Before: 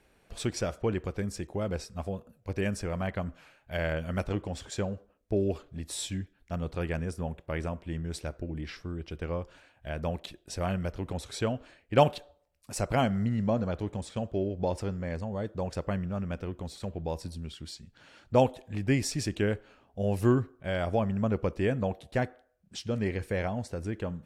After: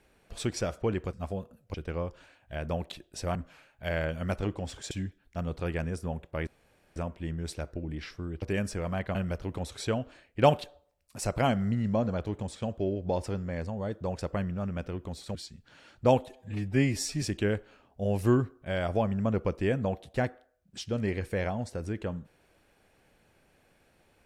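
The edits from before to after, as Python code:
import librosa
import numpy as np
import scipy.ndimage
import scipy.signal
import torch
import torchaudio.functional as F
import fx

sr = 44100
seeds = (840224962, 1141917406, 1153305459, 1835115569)

y = fx.edit(x, sr, fx.cut(start_s=1.13, length_s=0.76),
    fx.swap(start_s=2.5, length_s=0.73, other_s=9.08, other_length_s=1.61),
    fx.cut(start_s=4.79, length_s=1.27),
    fx.insert_room_tone(at_s=7.62, length_s=0.49),
    fx.cut(start_s=16.89, length_s=0.75),
    fx.stretch_span(start_s=18.58, length_s=0.62, factor=1.5), tone=tone)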